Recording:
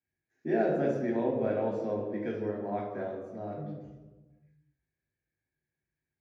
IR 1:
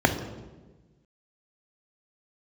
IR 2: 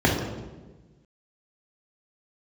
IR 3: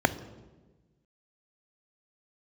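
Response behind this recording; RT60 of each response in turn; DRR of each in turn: 2; 1.3, 1.3, 1.3 seconds; 5.0, −3.0, 11.5 decibels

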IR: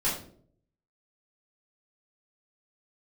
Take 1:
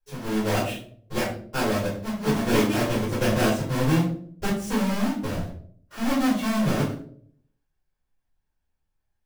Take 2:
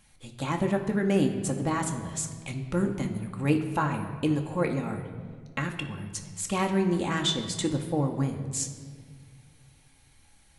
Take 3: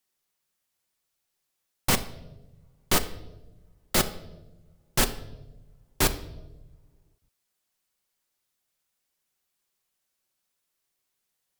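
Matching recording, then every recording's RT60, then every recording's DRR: 1; 0.55 s, 1.8 s, non-exponential decay; −9.5, 3.0, 7.5 decibels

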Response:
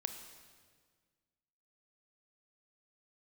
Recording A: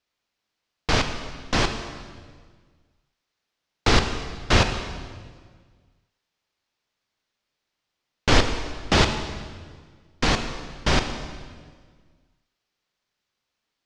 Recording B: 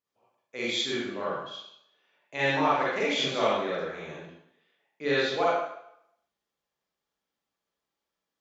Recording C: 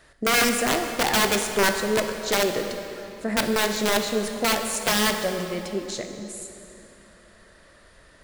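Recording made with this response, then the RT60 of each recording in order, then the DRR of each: A; 1.7, 0.75, 2.9 seconds; 6.5, −8.5, 5.0 decibels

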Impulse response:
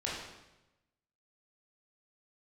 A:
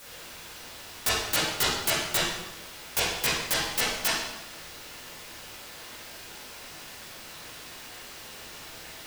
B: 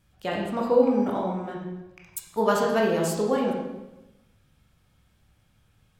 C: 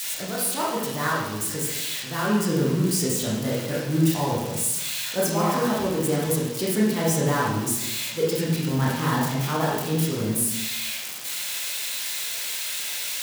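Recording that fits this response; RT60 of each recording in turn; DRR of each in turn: C; 1.0, 1.0, 1.0 seconds; −10.0, −2.0, −6.0 decibels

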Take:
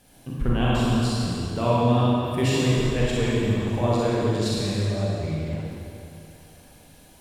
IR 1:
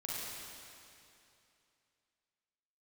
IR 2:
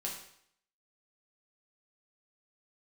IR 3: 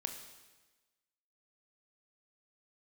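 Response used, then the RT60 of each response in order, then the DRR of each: 1; 2.7, 0.65, 1.2 seconds; −7.0, −3.0, 4.5 decibels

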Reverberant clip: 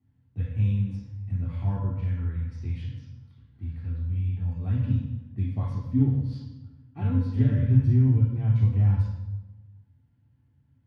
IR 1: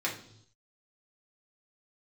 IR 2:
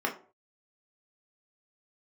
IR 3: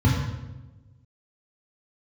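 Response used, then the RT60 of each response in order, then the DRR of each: 3; non-exponential decay, 0.40 s, 1.1 s; −4.0, 0.0, −3.5 decibels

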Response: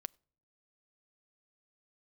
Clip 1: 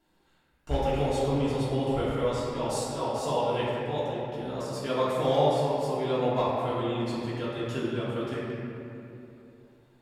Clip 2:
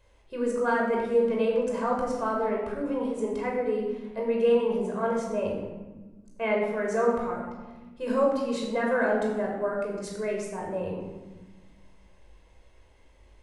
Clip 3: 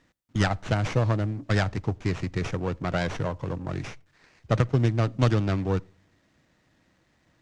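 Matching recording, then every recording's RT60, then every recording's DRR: 3; 2.9 s, 1.2 s, non-exponential decay; −10.0, −2.0, 21.0 decibels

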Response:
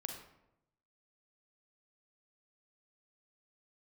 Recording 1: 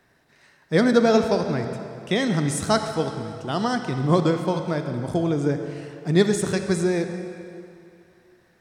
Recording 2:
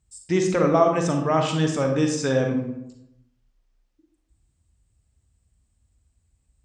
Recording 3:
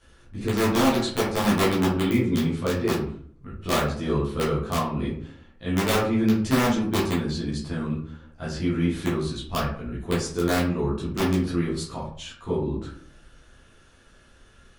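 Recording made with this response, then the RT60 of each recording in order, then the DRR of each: 2; 2.5, 0.85, 0.55 seconds; 6.0, 3.0, −8.5 decibels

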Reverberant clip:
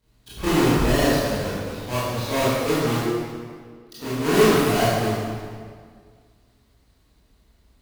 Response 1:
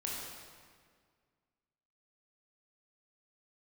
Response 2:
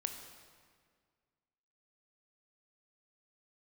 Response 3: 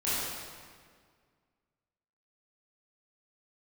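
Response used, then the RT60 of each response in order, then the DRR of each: 3; 1.9, 1.9, 1.9 seconds; −4.0, 5.5, −12.0 decibels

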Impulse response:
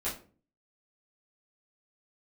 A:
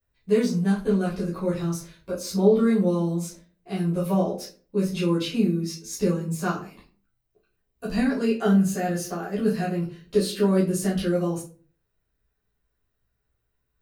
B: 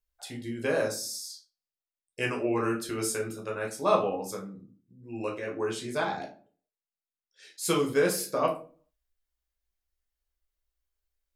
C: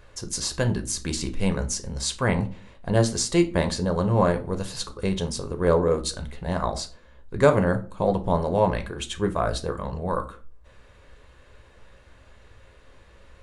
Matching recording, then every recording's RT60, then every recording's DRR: A; 0.40, 0.40, 0.40 seconds; −9.5, −1.0, 7.0 decibels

